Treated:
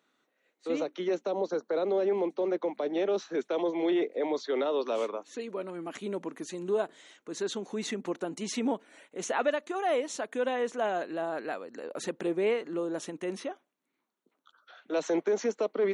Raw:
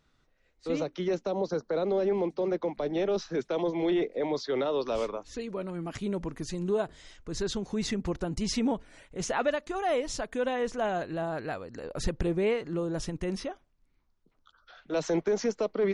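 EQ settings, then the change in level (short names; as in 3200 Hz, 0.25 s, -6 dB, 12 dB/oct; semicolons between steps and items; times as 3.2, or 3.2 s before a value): HPF 240 Hz 24 dB/oct; bell 5000 Hz -13 dB 0.2 oct; 0.0 dB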